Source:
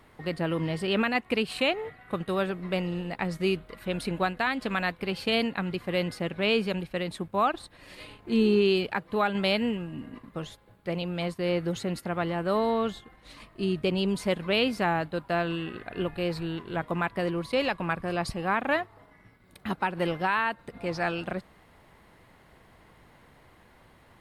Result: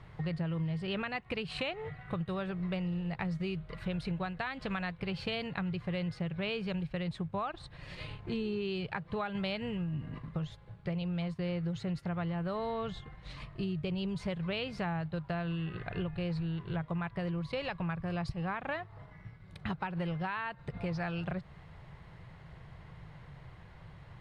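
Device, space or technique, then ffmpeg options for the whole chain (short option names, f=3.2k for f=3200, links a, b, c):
jukebox: -af "lowpass=5.2k,lowshelf=f=190:t=q:w=3:g=7.5,acompressor=threshold=-33dB:ratio=6"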